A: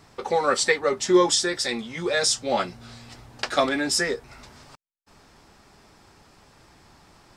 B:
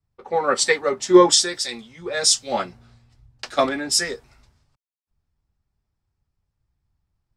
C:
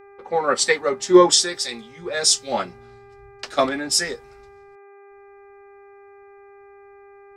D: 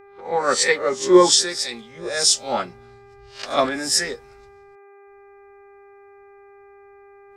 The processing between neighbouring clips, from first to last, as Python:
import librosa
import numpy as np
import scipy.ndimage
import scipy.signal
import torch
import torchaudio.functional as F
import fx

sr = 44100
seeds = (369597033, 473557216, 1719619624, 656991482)

y1 = fx.band_widen(x, sr, depth_pct=100)
y1 = y1 * 10.0 ** (-2.5 / 20.0)
y2 = fx.dmg_buzz(y1, sr, base_hz=400.0, harmonics=6, level_db=-47.0, tilt_db=-7, odd_only=False)
y3 = fx.spec_swells(y2, sr, rise_s=0.33)
y3 = y3 * 10.0 ** (-1.0 / 20.0)